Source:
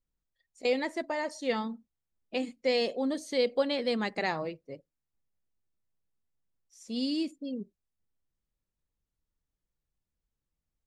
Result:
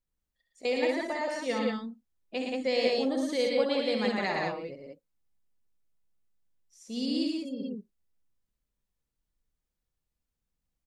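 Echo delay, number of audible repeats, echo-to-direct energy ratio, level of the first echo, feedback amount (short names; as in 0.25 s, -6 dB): 64 ms, 3, 1.0 dB, -6.5 dB, no steady repeat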